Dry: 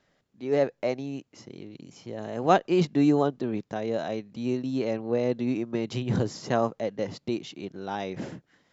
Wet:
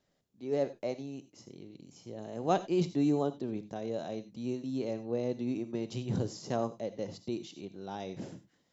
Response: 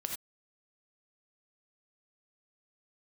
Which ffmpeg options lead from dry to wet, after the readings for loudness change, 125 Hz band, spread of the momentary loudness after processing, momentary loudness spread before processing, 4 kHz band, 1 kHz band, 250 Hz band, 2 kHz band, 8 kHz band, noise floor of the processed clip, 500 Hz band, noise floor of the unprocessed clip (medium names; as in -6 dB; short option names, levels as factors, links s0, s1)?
-7.0 dB, -6.0 dB, 18 LU, 18 LU, -7.0 dB, -8.5 dB, -6.5 dB, -12.0 dB, no reading, -75 dBFS, -7.0 dB, -72 dBFS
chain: -filter_complex "[0:a]equalizer=f=1700:t=o:w=1.6:g=-7.5,asplit=2[s0][s1];[1:a]atrim=start_sample=2205,highshelf=f=4000:g=11[s2];[s1][s2]afir=irnorm=-1:irlink=0,volume=0.355[s3];[s0][s3]amix=inputs=2:normalize=0,volume=0.376"